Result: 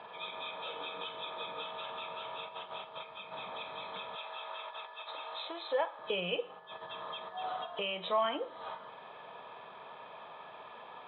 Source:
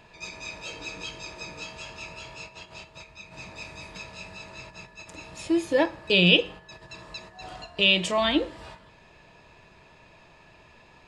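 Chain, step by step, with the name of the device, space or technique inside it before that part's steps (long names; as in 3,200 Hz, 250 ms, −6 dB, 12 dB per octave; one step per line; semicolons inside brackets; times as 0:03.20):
0:04.15–0:05.99: high-pass filter 580 Hz 12 dB per octave
hearing aid with frequency lowering (hearing-aid frequency compression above 3,000 Hz 4 to 1; downward compressor 2 to 1, threshold −45 dBFS, peak gain reduction 17 dB; loudspeaker in its box 330–5,000 Hz, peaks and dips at 330 Hz −10 dB, 480 Hz +4 dB, 790 Hz +6 dB, 1,200 Hz +9 dB, 1,900 Hz −6 dB, 2,800 Hz −10 dB)
level +4.5 dB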